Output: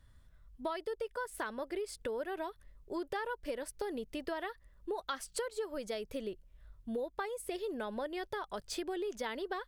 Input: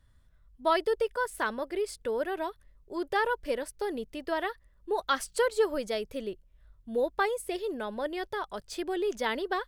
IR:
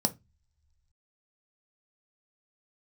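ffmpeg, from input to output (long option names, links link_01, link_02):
-af "acompressor=threshold=-37dB:ratio=6,volume=1.5dB"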